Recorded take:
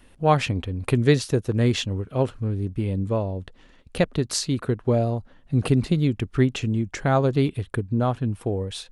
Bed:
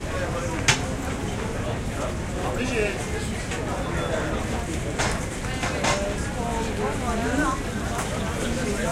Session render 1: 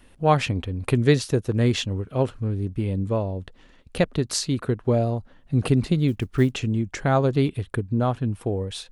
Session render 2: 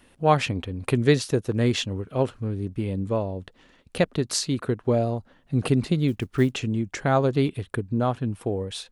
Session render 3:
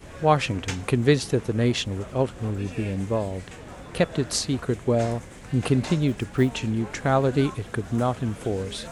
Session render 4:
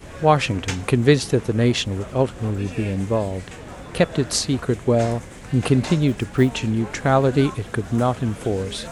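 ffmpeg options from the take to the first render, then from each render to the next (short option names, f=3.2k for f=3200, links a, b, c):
-filter_complex "[0:a]asplit=3[a][b][c];[a]afade=t=out:st=6.07:d=0.02[d];[b]acrusher=bits=9:mode=log:mix=0:aa=0.000001,afade=t=in:st=6.07:d=0.02,afade=t=out:st=6.51:d=0.02[e];[c]afade=t=in:st=6.51:d=0.02[f];[d][e][f]amix=inputs=3:normalize=0"
-af "lowshelf=f=69:g=-12"
-filter_complex "[1:a]volume=-13.5dB[a];[0:a][a]amix=inputs=2:normalize=0"
-af "volume=4dB,alimiter=limit=-2dB:level=0:latency=1"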